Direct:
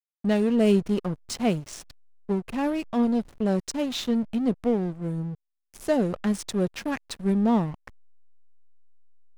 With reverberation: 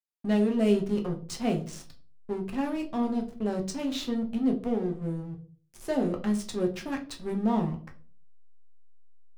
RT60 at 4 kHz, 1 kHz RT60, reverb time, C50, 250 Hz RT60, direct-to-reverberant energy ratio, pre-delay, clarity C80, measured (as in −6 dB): 0.30 s, 0.35 s, 0.40 s, 13.0 dB, 0.55 s, 2.5 dB, 7 ms, 18.0 dB